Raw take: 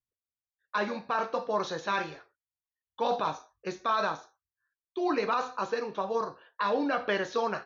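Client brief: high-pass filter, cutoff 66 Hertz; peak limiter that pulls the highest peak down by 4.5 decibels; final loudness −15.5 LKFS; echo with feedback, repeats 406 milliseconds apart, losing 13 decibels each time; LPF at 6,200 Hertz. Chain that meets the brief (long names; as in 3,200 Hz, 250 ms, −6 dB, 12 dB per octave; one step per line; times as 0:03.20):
high-pass filter 66 Hz
low-pass filter 6,200 Hz
brickwall limiter −21.5 dBFS
repeating echo 406 ms, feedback 22%, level −13 dB
level +18 dB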